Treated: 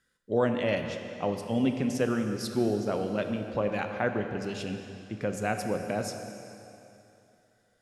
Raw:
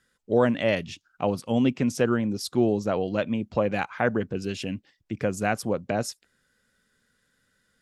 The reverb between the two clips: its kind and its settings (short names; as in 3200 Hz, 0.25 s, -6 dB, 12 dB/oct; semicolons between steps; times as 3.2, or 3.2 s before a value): plate-style reverb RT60 2.9 s, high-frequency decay 0.9×, DRR 5 dB; gain -5 dB